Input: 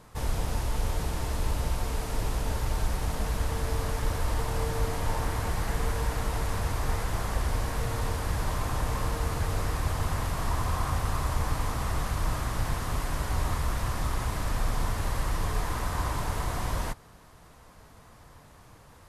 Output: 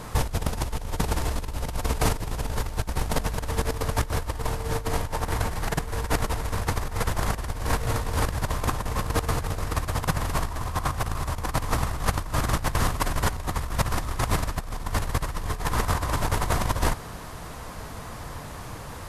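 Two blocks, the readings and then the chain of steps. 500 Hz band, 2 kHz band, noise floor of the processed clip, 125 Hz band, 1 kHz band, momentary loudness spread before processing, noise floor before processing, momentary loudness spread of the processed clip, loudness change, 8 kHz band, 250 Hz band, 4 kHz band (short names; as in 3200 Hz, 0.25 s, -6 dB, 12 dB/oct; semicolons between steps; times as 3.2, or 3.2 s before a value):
+4.0 dB, +4.5 dB, -38 dBFS, +2.5 dB, +4.0 dB, 2 LU, -53 dBFS, 7 LU, +2.5 dB, +4.5 dB, +4.5 dB, +4.5 dB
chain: negative-ratio compressor -33 dBFS, ratio -0.5; gain +8.5 dB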